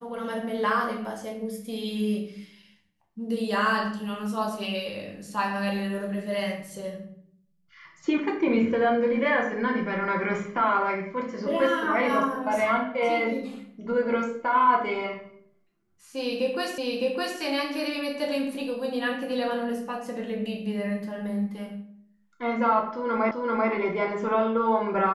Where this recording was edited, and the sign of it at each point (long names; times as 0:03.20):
0:16.78: the same again, the last 0.61 s
0:23.31: the same again, the last 0.39 s